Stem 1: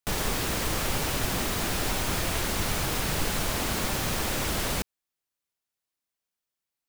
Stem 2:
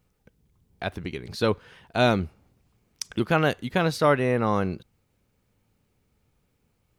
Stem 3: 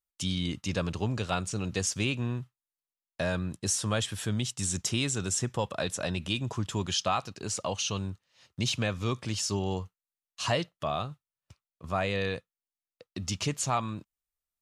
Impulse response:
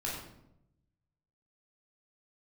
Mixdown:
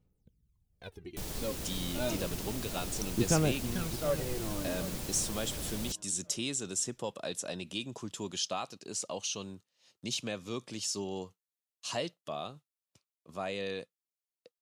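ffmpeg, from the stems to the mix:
-filter_complex "[0:a]adelay=1100,volume=-9dB[link_01];[1:a]aphaser=in_gain=1:out_gain=1:delay=3.8:decay=0.73:speed=0.3:type=sinusoidal,volume=-13.5dB,asplit=2[link_02][link_03];[link_03]volume=-14.5dB[link_04];[2:a]highpass=260,adelay=1450,volume=-1dB[link_05];[link_04]aecho=0:1:739|1478|2217|2956|3695|4434:1|0.4|0.16|0.064|0.0256|0.0102[link_06];[link_01][link_02][link_05][link_06]amix=inputs=4:normalize=0,equalizer=frequency=1400:width_type=o:width=2.4:gain=-9.5"

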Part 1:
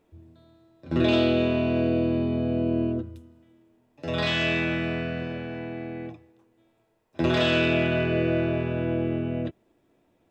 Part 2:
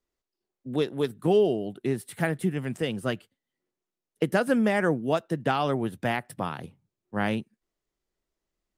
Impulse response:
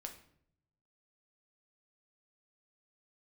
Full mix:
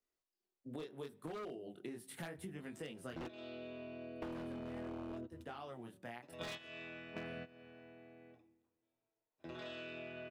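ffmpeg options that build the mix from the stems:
-filter_complex "[0:a]adelay=2250,volume=-3dB,asplit=2[link_01][link_02];[link_02]volume=-18dB[link_03];[1:a]bandreject=frequency=189.1:width_type=h:width=4,bandreject=frequency=378.2:width_type=h:width=4,bandreject=frequency=567.3:width_type=h:width=4,bandreject=frequency=756.4:width_type=h:width=4,bandreject=frequency=945.5:width_type=h:width=4,flanger=delay=19:depth=7:speed=0.75,volume=-4.5dB,afade=type=out:start_time=2.98:duration=0.48:silence=0.281838,asplit=3[link_04][link_05][link_06];[link_05]volume=-11dB[link_07];[link_06]apad=whole_len=553569[link_08];[link_01][link_08]sidechaingate=range=-27dB:threshold=-50dB:ratio=16:detection=peak[link_09];[2:a]atrim=start_sample=2205[link_10];[link_03][link_07]amix=inputs=2:normalize=0[link_11];[link_11][link_10]afir=irnorm=-1:irlink=0[link_12];[link_09][link_04][link_12]amix=inputs=3:normalize=0,lowshelf=frequency=160:gain=-9.5,aeval=exprs='0.0531*(abs(mod(val(0)/0.0531+3,4)-2)-1)':channel_layout=same,acompressor=threshold=-44dB:ratio=6"

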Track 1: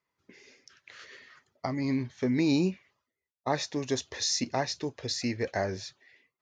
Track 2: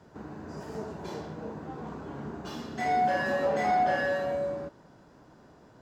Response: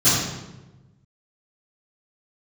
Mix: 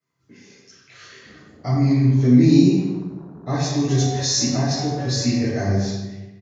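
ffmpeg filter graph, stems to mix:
-filter_complex "[0:a]volume=-10dB,asplit=3[link_01][link_02][link_03];[link_02]volume=-4dB[link_04];[1:a]afwtdn=0.0112,lowpass=2300,adelay=1100,volume=-5.5dB[link_05];[link_03]apad=whole_len=304869[link_06];[link_05][link_06]sidechaincompress=threshold=-40dB:ratio=8:attack=16:release=317[link_07];[2:a]atrim=start_sample=2205[link_08];[link_04][link_08]afir=irnorm=-1:irlink=0[link_09];[link_01][link_07][link_09]amix=inputs=3:normalize=0,acrossover=split=420|3000[link_10][link_11][link_12];[link_11]acompressor=threshold=-27dB:ratio=6[link_13];[link_10][link_13][link_12]amix=inputs=3:normalize=0"

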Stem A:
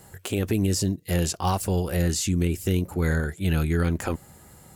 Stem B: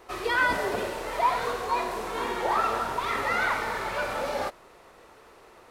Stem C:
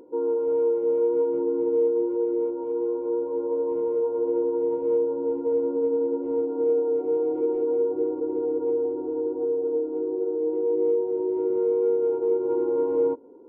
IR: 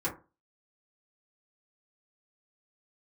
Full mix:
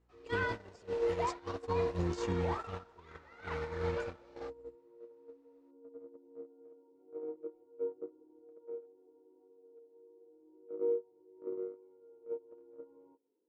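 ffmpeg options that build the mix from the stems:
-filter_complex "[0:a]adynamicequalizer=threshold=0.0158:dfrequency=410:dqfactor=0.75:tfrequency=410:tqfactor=0.75:attack=5:release=100:ratio=0.375:range=2:mode=cutabove:tftype=bell,aeval=exprs='val(0)+0.01*(sin(2*PI*60*n/s)+sin(2*PI*2*60*n/s)/2+sin(2*PI*3*60*n/s)/3+sin(2*PI*4*60*n/s)/4+sin(2*PI*5*60*n/s)/5)':channel_layout=same,aphaser=in_gain=1:out_gain=1:delay=2.7:decay=0.56:speed=0.46:type=sinusoidal,volume=-13.5dB[link_01];[1:a]volume=-7.5dB[link_02];[2:a]flanger=delay=17.5:depth=6.9:speed=0.16,volume=-5.5dB[link_03];[link_01][link_02][link_03]amix=inputs=3:normalize=0,agate=range=-25dB:threshold=-28dB:ratio=16:detection=peak,lowpass=frequency=6600:width=0.5412,lowpass=frequency=6600:width=1.3066,alimiter=limit=-24dB:level=0:latency=1:release=93"

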